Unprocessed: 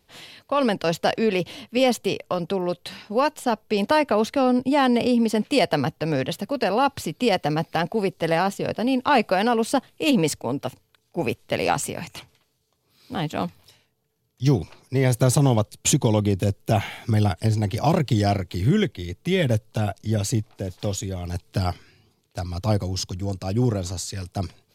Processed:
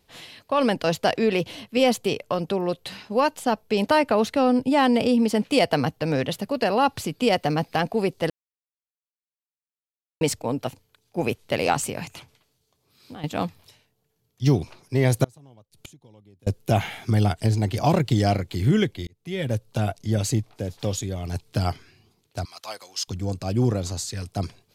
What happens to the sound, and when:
8.30–10.21 s: mute
12.12–13.24 s: compression, threshold -36 dBFS
15.24–16.47 s: inverted gate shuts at -24 dBFS, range -32 dB
19.07–19.78 s: fade in
22.45–23.08 s: high-pass 1.2 kHz

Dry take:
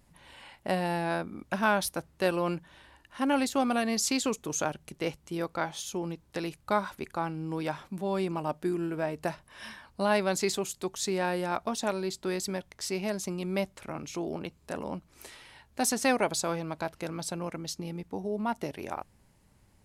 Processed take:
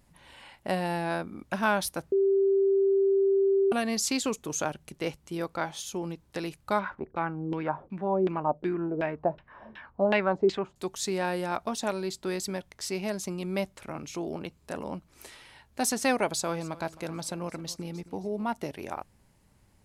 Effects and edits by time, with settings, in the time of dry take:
2.12–3.72 s: bleep 391 Hz -20 dBFS
6.79–10.76 s: LFO low-pass saw down 2.7 Hz 370–3100 Hz
16.28–18.46 s: feedback delay 265 ms, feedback 41%, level -19 dB

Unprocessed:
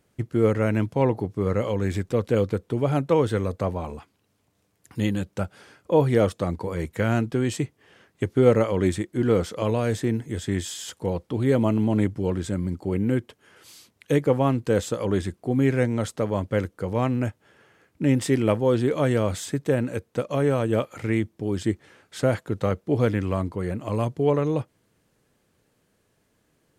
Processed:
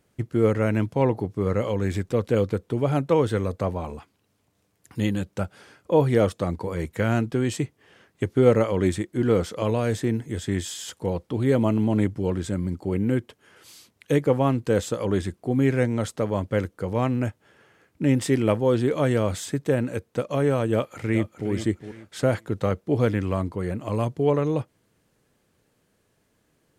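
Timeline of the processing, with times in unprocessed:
20.73–21.50 s: echo throw 410 ms, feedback 25%, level -10.5 dB

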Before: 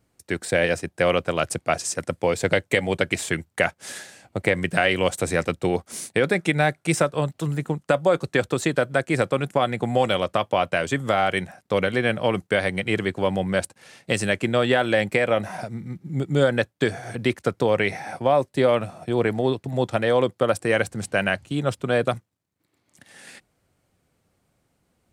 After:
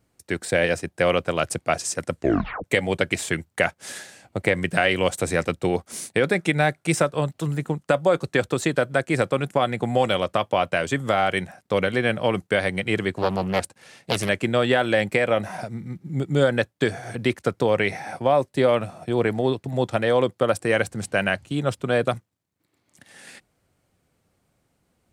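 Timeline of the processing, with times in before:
2.14 s: tape stop 0.50 s
13.18–14.29 s: loudspeaker Doppler distortion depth 0.54 ms

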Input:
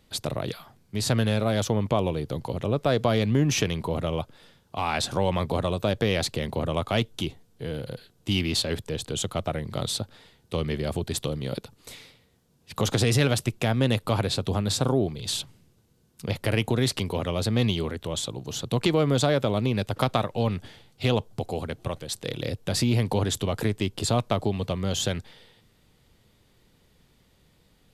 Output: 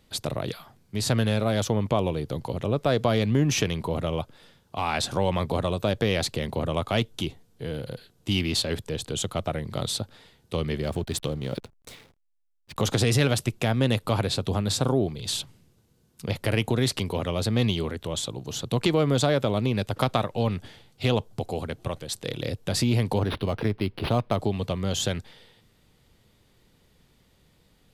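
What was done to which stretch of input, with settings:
10.82–12.81 s: hysteresis with a dead band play -41.5 dBFS
23.16–24.36 s: decimation joined by straight lines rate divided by 6×

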